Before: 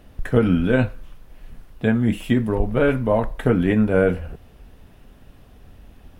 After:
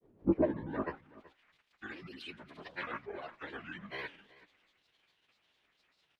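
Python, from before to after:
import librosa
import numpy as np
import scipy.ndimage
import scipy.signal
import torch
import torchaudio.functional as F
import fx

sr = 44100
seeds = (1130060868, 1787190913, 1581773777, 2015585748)

p1 = fx.pitch_keep_formants(x, sr, semitones=-11.0)
p2 = fx.filter_sweep_bandpass(p1, sr, from_hz=340.0, to_hz=2800.0, start_s=0.32, end_s=1.43, q=1.5)
p3 = fx.granulator(p2, sr, seeds[0], grain_ms=100.0, per_s=20.0, spray_ms=100.0, spread_st=7)
p4 = p3 + fx.echo_single(p3, sr, ms=377, db=-20.0, dry=0)
y = p4 * 10.0 ** (-4.5 / 20.0)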